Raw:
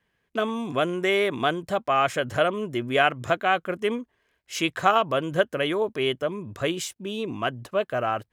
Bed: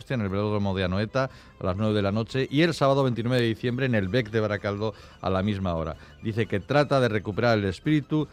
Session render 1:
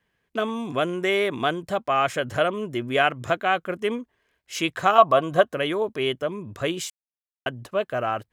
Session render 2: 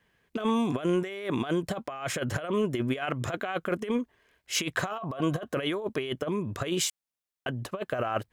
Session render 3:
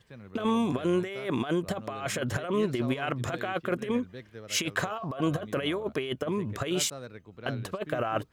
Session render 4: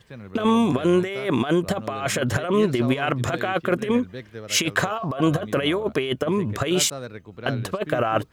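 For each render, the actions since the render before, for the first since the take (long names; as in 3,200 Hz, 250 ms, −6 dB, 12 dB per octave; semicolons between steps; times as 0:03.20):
0:04.98–0:05.54: hollow resonant body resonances 710/1,100/3,800 Hz, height 14 dB, ringing for 35 ms; 0:06.90–0:07.46: silence
brickwall limiter −13 dBFS, peak gain reduction 11 dB; compressor whose output falls as the input rises −28 dBFS, ratio −0.5
mix in bed −20 dB
level +7.5 dB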